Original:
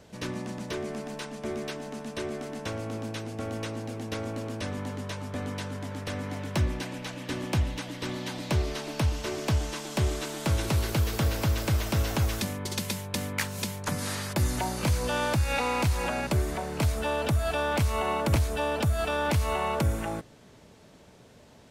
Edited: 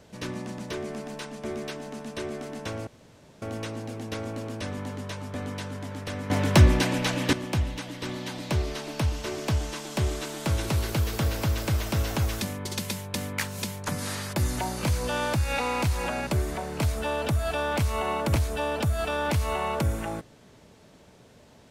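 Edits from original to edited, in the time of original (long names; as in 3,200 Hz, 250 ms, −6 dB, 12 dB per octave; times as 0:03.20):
0:02.87–0:03.42: fill with room tone
0:06.30–0:07.33: clip gain +10.5 dB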